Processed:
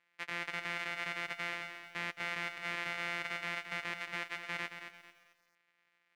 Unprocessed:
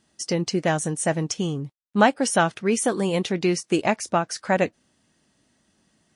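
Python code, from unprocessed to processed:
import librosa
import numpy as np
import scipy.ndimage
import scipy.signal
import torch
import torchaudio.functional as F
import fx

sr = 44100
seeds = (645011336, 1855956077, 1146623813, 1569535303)

p1 = np.r_[np.sort(x[:len(x) // 256 * 256].reshape(-1, 256), axis=1).ravel(), x[len(x) // 256 * 256:]]
p2 = np.clip(p1, -10.0 ** (-21.0 / 20.0), 10.0 ** (-21.0 / 20.0))
p3 = fx.bandpass_q(p2, sr, hz=2100.0, q=2.9)
p4 = p3 + fx.echo_feedback(p3, sr, ms=306, feedback_pct=31, wet_db=-21.0, dry=0)
p5 = fx.echo_crushed(p4, sr, ms=222, feedback_pct=35, bits=11, wet_db=-8.5)
y = F.gain(torch.from_numpy(p5), 3.0).numpy()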